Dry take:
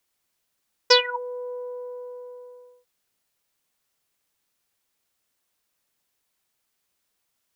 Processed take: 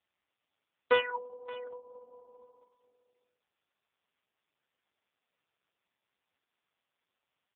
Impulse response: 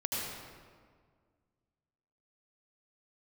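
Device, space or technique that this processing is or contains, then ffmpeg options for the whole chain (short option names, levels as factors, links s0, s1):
satellite phone: -af "highpass=380,lowpass=3200,aecho=1:1:574:0.112,volume=0.596" -ar 8000 -c:a libopencore_amrnb -b:a 4750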